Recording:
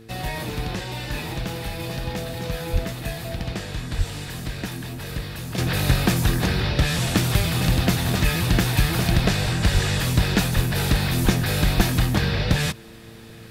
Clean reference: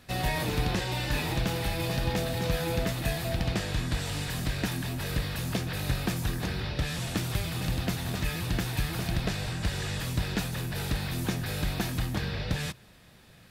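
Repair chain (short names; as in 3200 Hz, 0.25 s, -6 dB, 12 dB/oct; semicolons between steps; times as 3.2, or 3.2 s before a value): de-hum 112.6 Hz, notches 4; de-plosive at 2.72/3.97/9.73/10.55/11.24/11.76; gain correction -10 dB, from 5.58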